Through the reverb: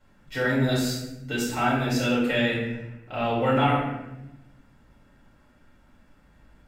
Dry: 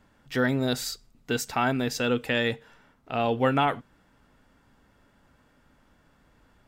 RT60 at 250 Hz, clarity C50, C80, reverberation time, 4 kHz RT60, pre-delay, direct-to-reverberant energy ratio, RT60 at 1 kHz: 1.4 s, 1.0 dB, 4.5 dB, 1.0 s, 0.65 s, 4 ms, -8.5 dB, 0.90 s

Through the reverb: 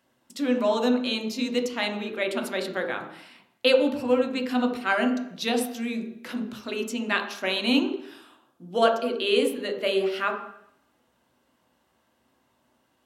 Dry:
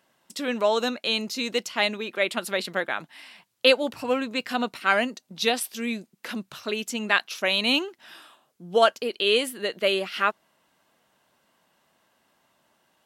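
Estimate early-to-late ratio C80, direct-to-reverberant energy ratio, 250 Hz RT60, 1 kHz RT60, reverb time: 9.5 dB, 2.0 dB, 0.70 s, 0.70 s, 0.70 s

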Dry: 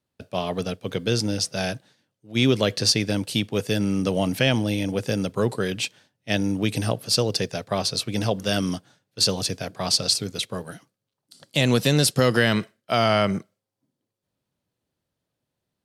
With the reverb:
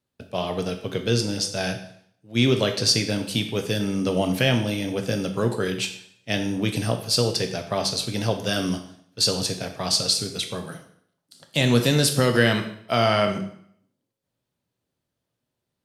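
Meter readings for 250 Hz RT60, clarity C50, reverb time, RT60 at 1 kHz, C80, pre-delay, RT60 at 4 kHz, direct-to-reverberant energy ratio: 0.65 s, 9.0 dB, 0.65 s, 0.65 s, 12.0 dB, 4 ms, 0.60 s, 5.0 dB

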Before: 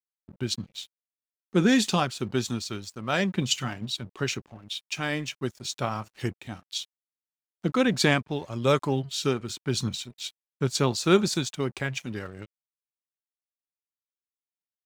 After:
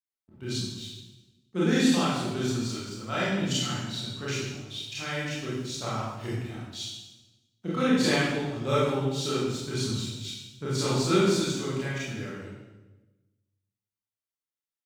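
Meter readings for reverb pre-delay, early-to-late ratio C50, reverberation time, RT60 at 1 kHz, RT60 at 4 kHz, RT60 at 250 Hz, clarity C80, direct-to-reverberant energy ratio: 25 ms, -2.0 dB, 1.1 s, 1.0 s, 0.95 s, 1.3 s, 1.5 dB, -9.5 dB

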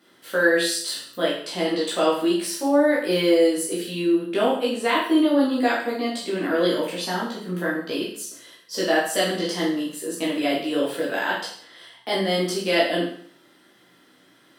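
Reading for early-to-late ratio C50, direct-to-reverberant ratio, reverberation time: 4.0 dB, -6.5 dB, 0.55 s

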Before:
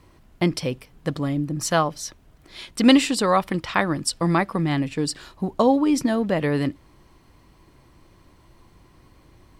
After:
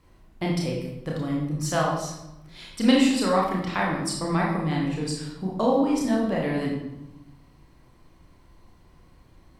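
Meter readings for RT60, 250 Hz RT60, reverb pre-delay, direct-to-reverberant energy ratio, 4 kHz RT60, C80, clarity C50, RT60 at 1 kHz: 0.90 s, 1.4 s, 27 ms, -3.0 dB, 0.70 s, 5.5 dB, 2.0 dB, 0.90 s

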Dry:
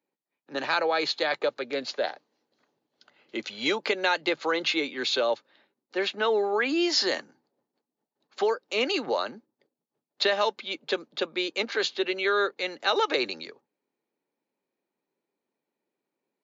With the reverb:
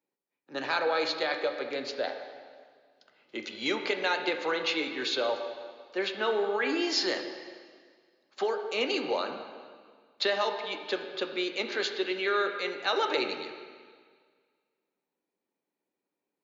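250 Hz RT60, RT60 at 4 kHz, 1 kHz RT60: 1.8 s, 1.7 s, 1.8 s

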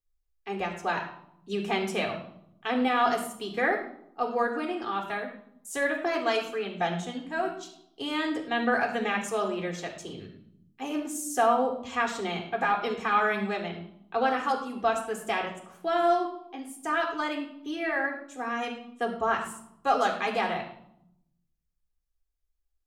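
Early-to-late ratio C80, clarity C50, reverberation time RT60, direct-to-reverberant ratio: 10.5 dB, 7.5 dB, 0.70 s, -1.0 dB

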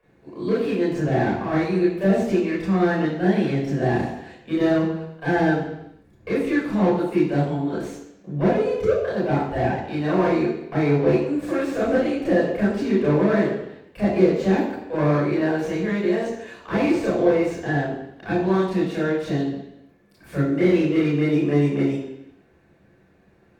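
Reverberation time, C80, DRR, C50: 0.80 s, 5.5 dB, -7.5 dB, 2.0 dB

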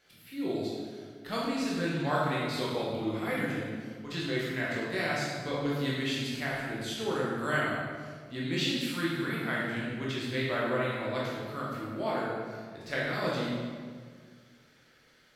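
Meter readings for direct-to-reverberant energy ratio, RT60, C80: -6.5 dB, 1.8 s, 1.0 dB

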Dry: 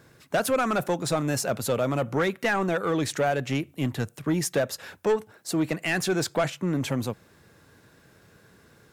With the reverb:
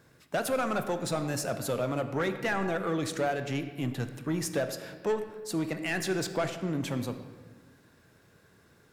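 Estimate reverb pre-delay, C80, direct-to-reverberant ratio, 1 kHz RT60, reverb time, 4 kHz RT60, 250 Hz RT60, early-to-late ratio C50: 21 ms, 10.5 dB, 8.0 dB, 1.2 s, 1.4 s, 0.95 s, 1.8 s, 9.5 dB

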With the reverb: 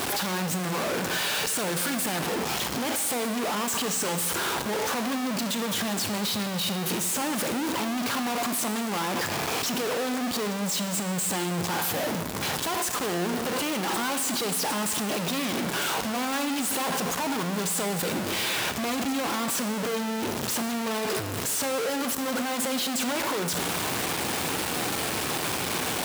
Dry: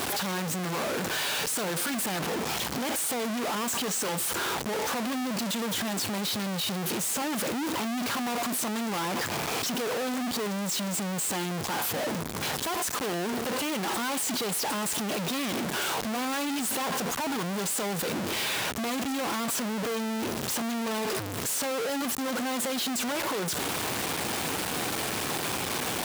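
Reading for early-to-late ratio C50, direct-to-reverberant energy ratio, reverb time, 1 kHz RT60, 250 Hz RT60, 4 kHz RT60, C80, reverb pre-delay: 9.5 dB, 8.5 dB, 1.4 s, 1.4 s, 1.5 s, 1.4 s, 11.0 dB, 28 ms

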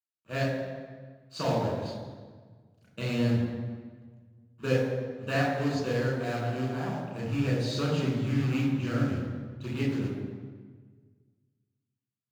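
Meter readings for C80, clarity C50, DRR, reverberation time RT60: 3.5 dB, 1.5 dB, -4.0 dB, 1.5 s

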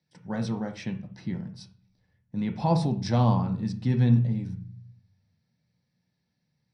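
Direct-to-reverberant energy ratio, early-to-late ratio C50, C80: 4.0 dB, 11.0 dB, 16.5 dB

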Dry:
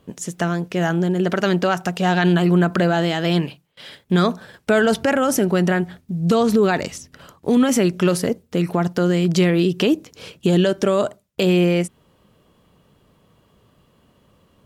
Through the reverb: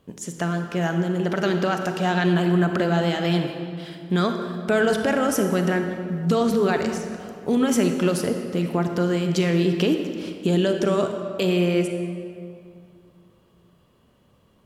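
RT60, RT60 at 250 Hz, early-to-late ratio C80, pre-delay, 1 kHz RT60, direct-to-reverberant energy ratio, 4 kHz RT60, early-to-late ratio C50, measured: 2.4 s, 2.8 s, 7.0 dB, 32 ms, 2.3 s, 5.0 dB, 1.5 s, 6.0 dB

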